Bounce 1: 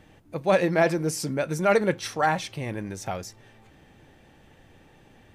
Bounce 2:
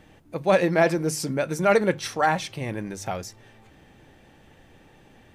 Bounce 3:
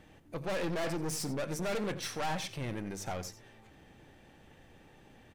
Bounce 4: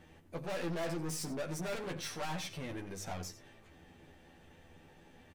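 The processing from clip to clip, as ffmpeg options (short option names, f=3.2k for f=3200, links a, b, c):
-af "bandreject=f=50:t=h:w=6,bandreject=f=100:t=h:w=6,bandreject=f=150:t=h:w=6,volume=1.5dB"
-filter_complex "[0:a]aeval=exprs='(tanh(28.2*val(0)+0.45)-tanh(0.45))/28.2':c=same,asplit=2[a][b];[b]adelay=87.46,volume=-14dB,highshelf=f=4k:g=-1.97[c];[a][c]amix=inputs=2:normalize=0,volume=-3dB"
-filter_complex "[0:a]asoftclip=type=tanh:threshold=-32.5dB,asplit=2[a][b];[b]adelay=12,volume=-2.5dB[c];[a][c]amix=inputs=2:normalize=0,volume=-3dB"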